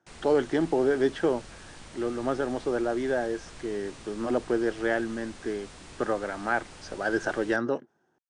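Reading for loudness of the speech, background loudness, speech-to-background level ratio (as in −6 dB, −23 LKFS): −29.0 LKFS, −47.0 LKFS, 18.0 dB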